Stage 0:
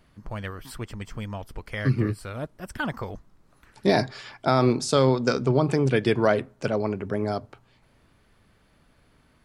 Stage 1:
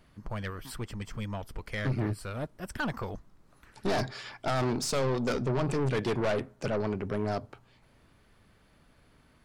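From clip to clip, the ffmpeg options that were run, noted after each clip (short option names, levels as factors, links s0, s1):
-af "aeval=exprs='(tanh(17.8*val(0)+0.35)-tanh(0.35))/17.8':c=same"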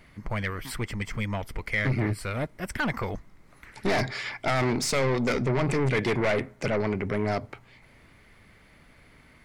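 -filter_complex "[0:a]equalizer=f=2100:w=4.3:g=12,asplit=2[s0][s1];[s1]alimiter=level_in=1.41:limit=0.0631:level=0:latency=1,volume=0.708,volume=0.891[s2];[s0][s2]amix=inputs=2:normalize=0"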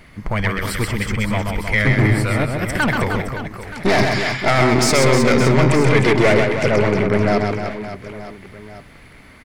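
-af "aecho=1:1:130|312|566.8|923.5|1423:0.631|0.398|0.251|0.158|0.1,volume=2.82"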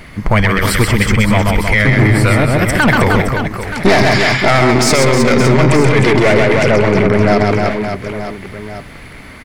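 -af "alimiter=level_in=3.55:limit=0.891:release=50:level=0:latency=1,volume=0.891"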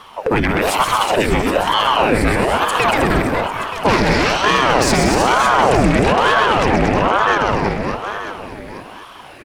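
-filter_complex "[0:a]asplit=2[s0][s1];[s1]aecho=0:1:232|464|696|928:0.473|0.166|0.058|0.0203[s2];[s0][s2]amix=inputs=2:normalize=0,aeval=exprs='val(0)*sin(2*PI*640*n/s+640*0.75/1.1*sin(2*PI*1.1*n/s))':c=same,volume=0.75"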